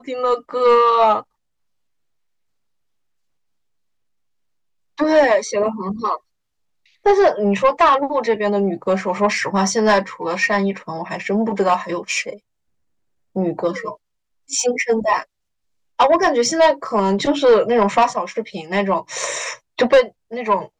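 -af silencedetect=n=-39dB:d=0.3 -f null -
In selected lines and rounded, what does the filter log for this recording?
silence_start: 1.22
silence_end: 4.98 | silence_duration: 3.76
silence_start: 6.18
silence_end: 7.05 | silence_duration: 0.87
silence_start: 12.38
silence_end: 13.36 | silence_duration: 0.98
silence_start: 13.95
silence_end: 14.50 | silence_duration: 0.54
silence_start: 15.24
silence_end: 15.99 | silence_duration: 0.75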